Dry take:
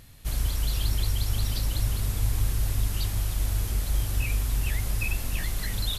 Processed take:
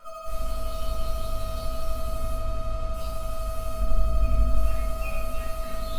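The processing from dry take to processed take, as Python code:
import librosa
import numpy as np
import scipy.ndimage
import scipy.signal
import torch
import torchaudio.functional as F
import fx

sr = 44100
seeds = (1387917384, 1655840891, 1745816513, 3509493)

p1 = fx.tilt_shelf(x, sr, db=7.5, hz=800.0, at=(3.77, 4.55))
p2 = p1 + 10.0 ** (-31.0 / 20.0) * np.sin(2.0 * np.pi * 1300.0 * np.arange(len(p1)) / sr)
p3 = fx.vibrato(p2, sr, rate_hz=12.0, depth_cents=76.0)
p4 = fx.resonator_bank(p3, sr, root=56, chord='minor', decay_s=0.27)
p5 = fx.sample_hold(p4, sr, seeds[0], rate_hz=1900.0, jitter_pct=0)
p6 = p4 + (p5 * librosa.db_to_amplitude(-5.0))
p7 = fx.air_absorb(p6, sr, metres=75.0, at=(2.36, 2.94))
p8 = p7 + fx.echo_alternate(p7, sr, ms=162, hz=980.0, feedback_pct=57, wet_db=-7.0, dry=0)
y = fx.room_shoebox(p8, sr, seeds[1], volume_m3=130.0, walls='mixed', distance_m=1.8)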